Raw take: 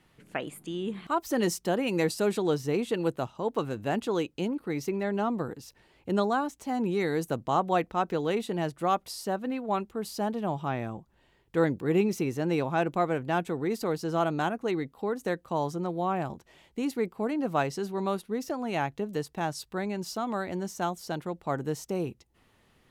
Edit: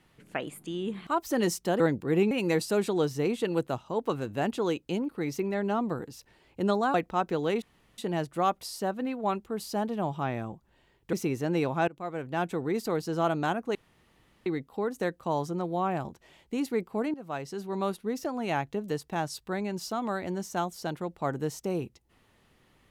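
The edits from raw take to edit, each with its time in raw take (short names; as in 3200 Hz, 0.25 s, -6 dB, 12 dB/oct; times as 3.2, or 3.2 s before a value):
6.43–7.75 cut
8.43 insert room tone 0.36 s
11.58–12.09 move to 1.8
12.84–13.5 fade in, from -21 dB
14.71 insert room tone 0.71 s
17.39–18.14 fade in, from -16.5 dB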